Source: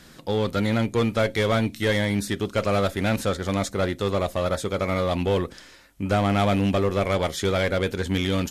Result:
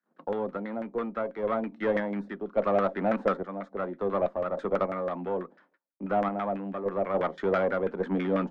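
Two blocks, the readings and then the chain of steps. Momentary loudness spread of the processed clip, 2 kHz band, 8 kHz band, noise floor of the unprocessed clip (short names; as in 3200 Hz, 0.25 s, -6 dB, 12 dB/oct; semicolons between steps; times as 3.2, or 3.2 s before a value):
8 LU, -9.0 dB, under -30 dB, -49 dBFS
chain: gate -45 dBFS, range -37 dB; steep high-pass 170 Hz 72 dB/oct; random-step tremolo, depth 70%; LFO low-pass saw down 6.1 Hz 570–1700 Hz; added harmonics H 6 -28 dB, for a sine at -9.5 dBFS; gain -3 dB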